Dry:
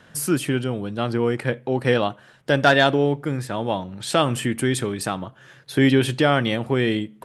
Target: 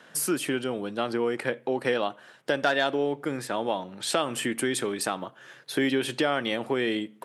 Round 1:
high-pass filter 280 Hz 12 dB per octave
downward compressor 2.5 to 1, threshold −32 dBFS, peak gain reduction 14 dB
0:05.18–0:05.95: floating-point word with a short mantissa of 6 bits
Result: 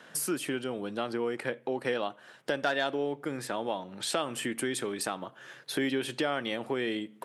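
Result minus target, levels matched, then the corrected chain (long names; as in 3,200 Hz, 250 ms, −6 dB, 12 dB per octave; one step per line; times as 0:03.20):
downward compressor: peak gain reduction +5 dB
high-pass filter 280 Hz 12 dB per octave
downward compressor 2.5 to 1, threshold −24 dBFS, peak gain reduction 9 dB
0:05.18–0:05.95: floating-point word with a short mantissa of 6 bits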